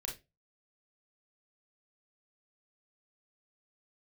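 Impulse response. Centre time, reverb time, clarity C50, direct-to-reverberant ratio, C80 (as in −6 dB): 24 ms, 0.25 s, 9.0 dB, −0.5 dB, 17.5 dB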